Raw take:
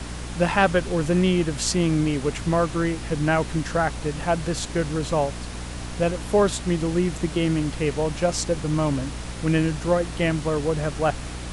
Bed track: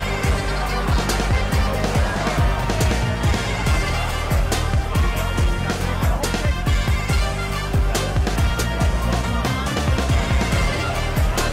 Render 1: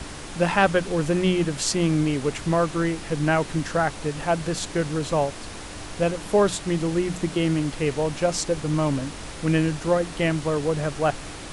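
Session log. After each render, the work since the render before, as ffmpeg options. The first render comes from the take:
-af "bandreject=f=60:t=h:w=6,bandreject=f=120:t=h:w=6,bandreject=f=180:t=h:w=6,bandreject=f=240:t=h:w=6"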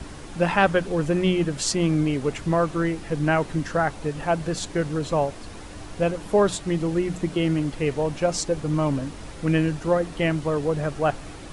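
-af "afftdn=nr=7:nf=-37"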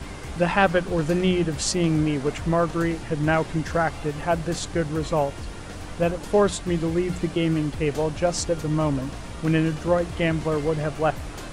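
-filter_complex "[1:a]volume=0.126[s0];[0:a][s0]amix=inputs=2:normalize=0"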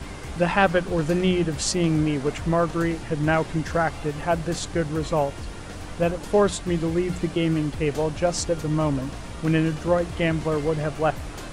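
-af anull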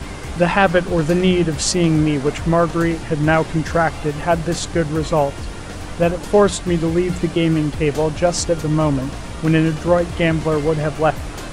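-af "volume=2,alimiter=limit=0.891:level=0:latency=1"

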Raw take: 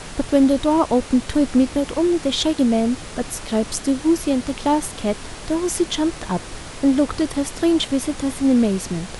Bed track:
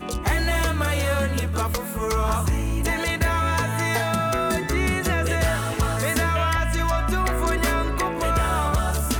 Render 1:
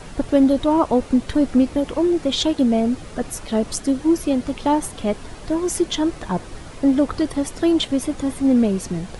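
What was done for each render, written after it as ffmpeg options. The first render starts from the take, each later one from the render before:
-af "afftdn=nr=8:nf=-35"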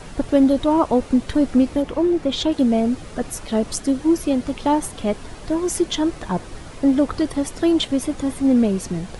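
-filter_complex "[0:a]asettb=1/sr,asplit=3[s0][s1][s2];[s0]atrim=end=1.824[s3];[s1]atrim=start=1.82:end=2.52,asetpts=PTS-STARTPTS,afade=t=in:d=0.004:c=qsin,afade=t=out:st=0.696:d=0.004:c=qsin,highshelf=f=4000:g=-7.5[s4];[s2]atrim=start=2.516[s5];[s3][s4]acrossfade=d=0.004:c1=hsin:c2=qsin[s6];[s6][s5]acrossfade=d=0.004:c1=qsin:c2=hsin"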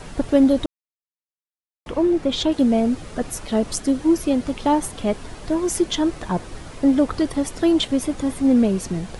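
-filter_complex "[0:a]asplit=3[s0][s1][s2];[s0]atrim=end=0.66,asetpts=PTS-STARTPTS,afade=t=out:st=0.656:d=0.004:c=hsin[s3];[s1]atrim=start=0.66:end=1.86,asetpts=PTS-STARTPTS,volume=0[s4];[s2]atrim=start=1.86,asetpts=PTS-STARTPTS,afade=t=in:d=0.004:c=hsin[s5];[s3][s4][s5]concat=n=3:v=0:a=1"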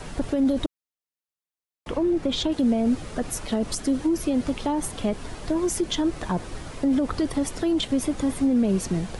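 -filter_complex "[0:a]alimiter=limit=0.2:level=0:latency=1:release=23,acrossover=split=280[s0][s1];[s1]acompressor=threshold=0.0631:ratio=6[s2];[s0][s2]amix=inputs=2:normalize=0"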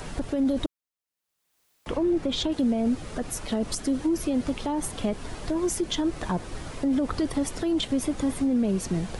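-af "alimiter=limit=0.133:level=0:latency=1:release=270,acompressor=mode=upward:threshold=0.00447:ratio=2.5"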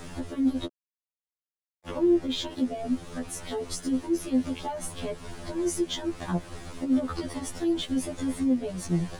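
-af "aeval=exprs='sgn(val(0))*max(abs(val(0))-0.00355,0)':c=same,afftfilt=real='re*2*eq(mod(b,4),0)':imag='im*2*eq(mod(b,4),0)':win_size=2048:overlap=0.75"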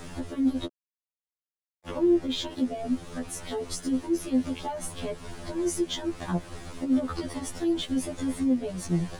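-af anull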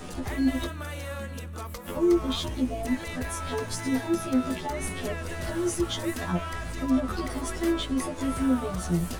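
-filter_complex "[1:a]volume=0.224[s0];[0:a][s0]amix=inputs=2:normalize=0"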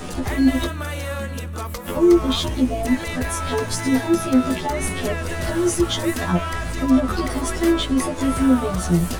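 -af "volume=2.51"

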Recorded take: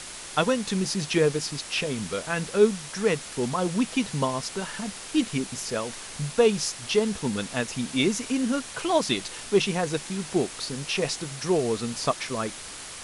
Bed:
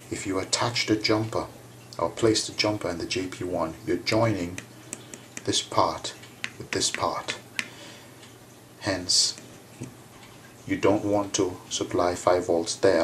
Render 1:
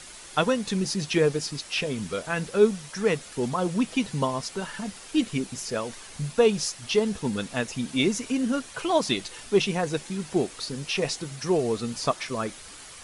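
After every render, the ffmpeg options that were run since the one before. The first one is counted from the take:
-af "afftdn=nr=7:nf=-40"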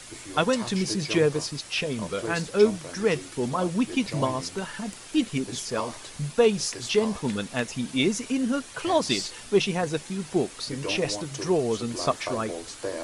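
-filter_complex "[1:a]volume=0.251[s0];[0:a][s0]amix=inputs=2:normalize=0"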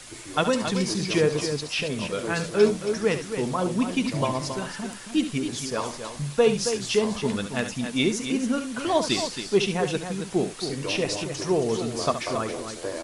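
-af "aecho=1:1:70|273:0.299|0.376"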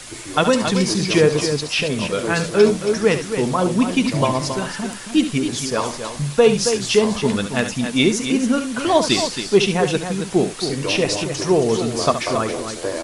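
-af "volume=2.24,alimiter=limit=0.708:level=0:latency=1"

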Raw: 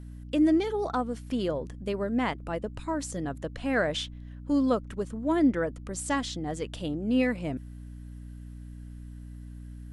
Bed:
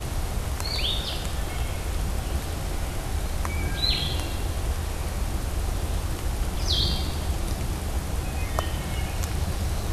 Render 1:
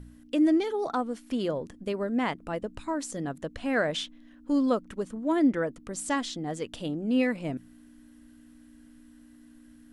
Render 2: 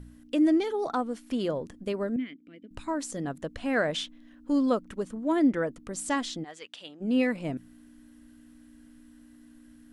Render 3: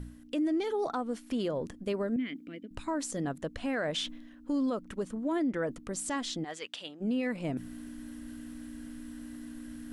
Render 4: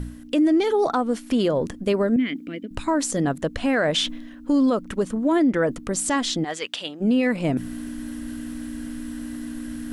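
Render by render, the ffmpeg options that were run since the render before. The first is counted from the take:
-af "bandreject=f=60:t=h:w=4,bandreject=f=120:t=h:w=4,bandreject=f=180:t=h:w=4"
-filter_complex "[0:a]asettb=1/sr,asplit=3[s0][s1][s2];[s0]atrim=end=2.164[s3];[s1]atrim=start=2.16:end=2.71,asetpts=PTS-STARTPTS,afade=t=in:d=0.004:c=qsin,afade=t=out:st=0.546:d=0.004:c=qsin,asplit=3[s4][s5][s6];[s4]bandpass=f=270:t=q:w=8,volume=1[s7];[s5]bandpass=f=2290:t=q:w=8,volume=0.501[s8];[s6]bandpass=f=3010:t=q:w=8,volume=0.355[s9];[s7][s8][s9]amix=inputs=3:normalize=0[s10];[s2]atrim=start=2.706[s11];[s3][s10]acrossfade=d=0.004:c1=hsin:c2=qsin[s12];[s12][s11]acrossfade=d=0.004:c1=qsin:c2=hsin,asplit=3[s13][s14][s15];[s13]afade=t=out:st=6.43:d=0.02[s16];[s14]bandpass=f=2800:t=q:w=0.76,afade=t=in:st=6.43:d=0.02,afade=t=out:st=7:d=0.02[s17];[s15]afade=t=in:st=7:d=0.02[s18];[s16][s17][s18]amix=inputs=3:normalize=0"
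-af "areverse,acompressor=mode=upward:threshold=0.0224:ratio=2.5,areverse,alimiter=limit=0.0631:level=0:latency=1:release=112"
-af "volume=3.55"

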